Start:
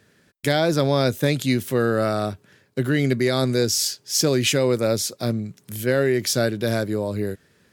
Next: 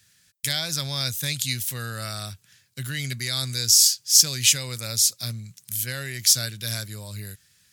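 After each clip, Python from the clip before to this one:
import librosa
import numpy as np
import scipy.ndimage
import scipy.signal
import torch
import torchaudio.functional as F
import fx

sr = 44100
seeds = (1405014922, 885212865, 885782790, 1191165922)

y = fx.curve_eq(x, sr, hz=(120.0, 360.0, 2500.0, 6400.0), db=(0, -20, 4, 13))
y = y * librosa.db_to_amplitude(-5.0)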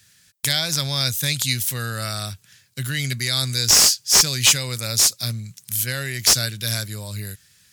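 y = fx.slew_limit(x, sr, full_power_hz=1100.0)
y = y * librosa.db_to_amplitude(5.0)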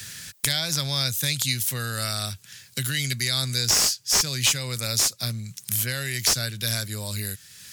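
y = fx.band_squash(x, sr, depth_pct=70)
y = y * librosa.db_to_amplitude(-3.5)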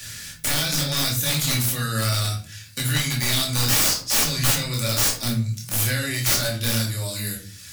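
y = fx.chorus_voices(x, sr, voices=4, hz=0.64, base_ms=26, depth_ms=1.7, mix_pct=40)
y = (np.mod(10.0 ** (19.0 / 20.0) * y + 1.0, 2.0) - 1.0) / 10.0 ** (19.0 / 20.0)
y = fx.room_shoebox(y, sr, seeds[0], volume_m3=330.0, walls='furnished', distance_m=2.4)
y = y * librosa.db_to_amplitude(2.5)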